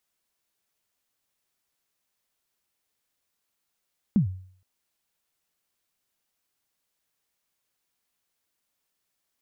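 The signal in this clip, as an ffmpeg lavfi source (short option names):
-f lavfi -i "aevalsrc='0.2*pow(10,-3*t/0.54)*sin(2*PI*(230*0.11/log(93/230)*(exp(log(93/230)*min(t,0.11)/0.11)-1)+93*max(t-0.11,0)))':d=0.47:s=44100"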